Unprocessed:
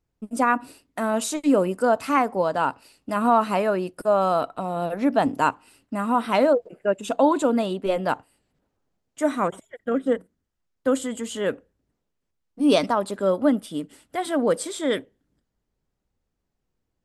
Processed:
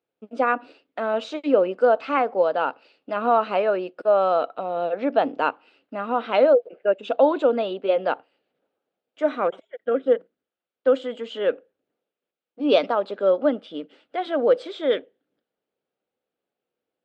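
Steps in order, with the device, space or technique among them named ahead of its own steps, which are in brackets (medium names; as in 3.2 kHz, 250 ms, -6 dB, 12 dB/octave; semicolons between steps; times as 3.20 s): phone earpiece (cabinet simulation 400–3600 Hz, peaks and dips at 500 Hz +5 dB, 1 kHz -8 dB, 1.9 kHz -6 dB); trim +2 dB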